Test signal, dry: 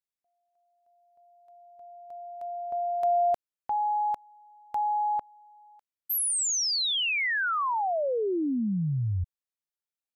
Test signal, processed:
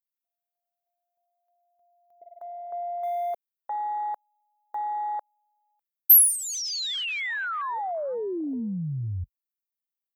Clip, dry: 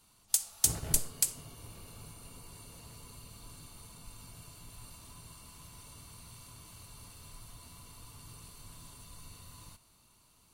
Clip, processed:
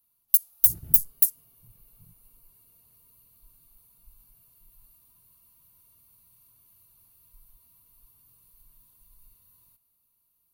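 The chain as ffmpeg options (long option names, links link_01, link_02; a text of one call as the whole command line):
ffmpeg -i in.wav -af "aeval=exprs='0.075*(abs(mod(val(0)/0.075+3,4)-2)-1)':channel_layout=same,aexciter=amount=6.3:drive=9.7:freq=11000,afwtdn=0.0251,volume=-2.5dB" out.wav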